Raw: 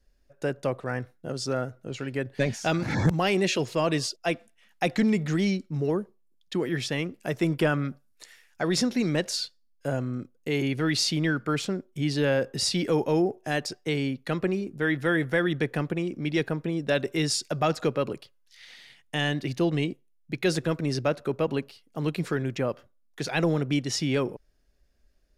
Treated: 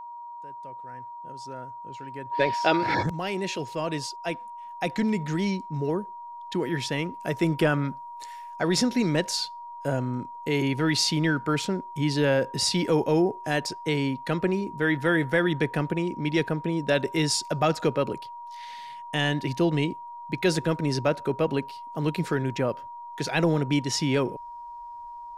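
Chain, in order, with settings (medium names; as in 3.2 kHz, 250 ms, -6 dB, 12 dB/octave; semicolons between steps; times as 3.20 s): fade-in on the opening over 7.90 s; whistle 950 Hz -39 dBFS; time-frequency box 2.32–3.03 s, 290–5600 Hz +12 dB; trim +1.5 dB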